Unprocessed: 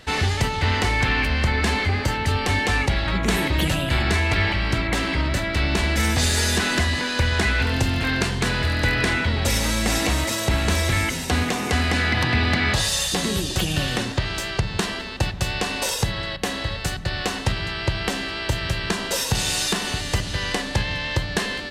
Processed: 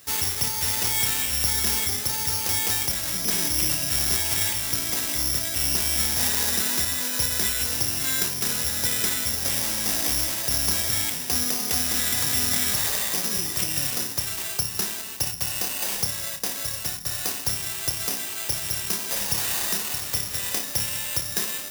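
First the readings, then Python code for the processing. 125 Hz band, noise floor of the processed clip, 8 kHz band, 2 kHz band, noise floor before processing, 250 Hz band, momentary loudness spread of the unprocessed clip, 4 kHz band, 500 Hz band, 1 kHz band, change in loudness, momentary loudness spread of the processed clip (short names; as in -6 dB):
-13.5 dB, -33 dBFS, +5.5 dB, -9.5 dB, -30 dBFS, -11.0 dB, 6 LU, -2.0 dB, -10.5 dB, -9.5 dB, -0.5 dB, 5 LU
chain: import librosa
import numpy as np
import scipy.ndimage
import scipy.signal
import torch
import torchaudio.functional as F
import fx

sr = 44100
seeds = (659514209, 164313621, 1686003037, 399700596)

p1 = scipy.signal.sosfilt(scipy.signal.butter(2, 76.0, 'highpass', fs=sr, output='sos'), x)
p2 = p1 + fx.room_flutter(p1, sr, wall_m=4.9, rt60_s=0.23, dry=0)
p3 = (np.kron(p2[::8], np.eye(8)[0]) * 8)[:len(p2)]
y = F.gain(torch.from_numpy(p3), -12.0).numpy()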